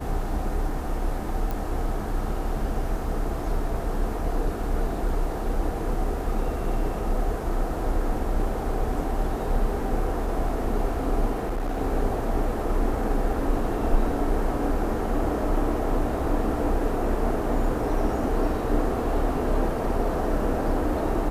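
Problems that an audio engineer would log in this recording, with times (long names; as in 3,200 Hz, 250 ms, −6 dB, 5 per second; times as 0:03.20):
0:01.51: click
0:11.32–0:11.82: clipping −23.5 dBFS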